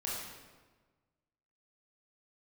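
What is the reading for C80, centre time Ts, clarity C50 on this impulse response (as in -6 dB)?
2.0 dB, 84 ms, -1.0 dB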